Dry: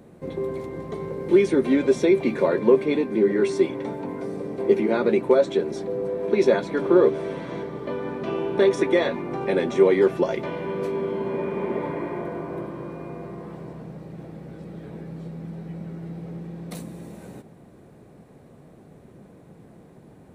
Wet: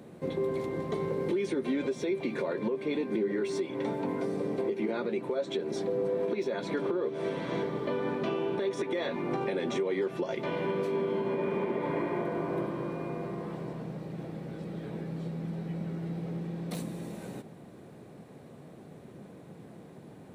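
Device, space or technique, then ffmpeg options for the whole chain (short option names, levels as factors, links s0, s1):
broadcast voice chain: -af "highpass=100,deesser=0.9,acompressor=threshold=0.0891:ratio=4,equalizer=f=3500:t=o:w=1.1:g=3.5,alimiter=limit=0.0794:level=0:latency=1:release=256"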